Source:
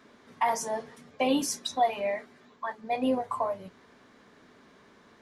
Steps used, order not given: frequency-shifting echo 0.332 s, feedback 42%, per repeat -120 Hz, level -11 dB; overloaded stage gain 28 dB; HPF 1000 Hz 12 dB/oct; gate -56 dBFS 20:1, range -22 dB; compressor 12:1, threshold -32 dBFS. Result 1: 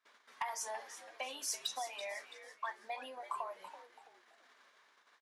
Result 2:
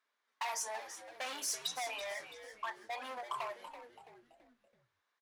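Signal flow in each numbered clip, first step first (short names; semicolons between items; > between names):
compressor > gate > frequency-shifting echo > HPF > overloaded stage; overloaded stage > compressor > HPF > gate > frequency-shifting echo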